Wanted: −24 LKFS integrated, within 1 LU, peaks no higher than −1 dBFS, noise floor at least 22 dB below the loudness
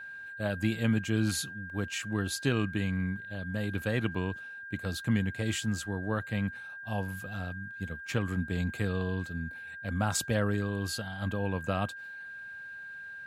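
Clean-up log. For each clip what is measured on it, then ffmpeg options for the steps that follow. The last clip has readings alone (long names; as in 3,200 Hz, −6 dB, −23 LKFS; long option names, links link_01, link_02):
interfering tone 1,600 Hz; level of the tone −41 dBFS; integrated loudness −33.0 LKFS; sample peak −15.0 dBFS; target loudness −24.0 LKFS
→ -af "bandreject=frequency=1600:width=30"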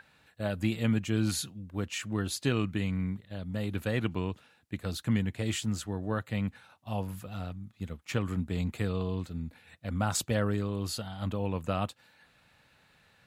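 interfering tone none found; integrated loudness −33.0 LKFS; sample peak −15.5 dBFS; target loudness −24.0 LKFS
→ -af "volume=9dB"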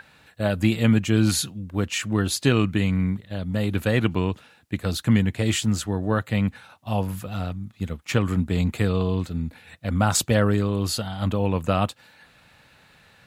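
integrated loudness −24.0 LKFS; sample peak −6.5 dBFS; background noise floor −56 dBFS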